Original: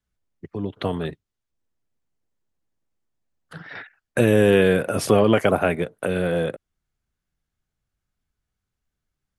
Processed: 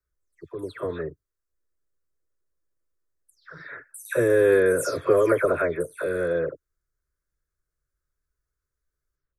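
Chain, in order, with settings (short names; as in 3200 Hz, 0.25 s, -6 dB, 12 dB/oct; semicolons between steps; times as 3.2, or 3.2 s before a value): spectral delay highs early, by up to 0.226 s; fixed phaser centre 790 Hz, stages 6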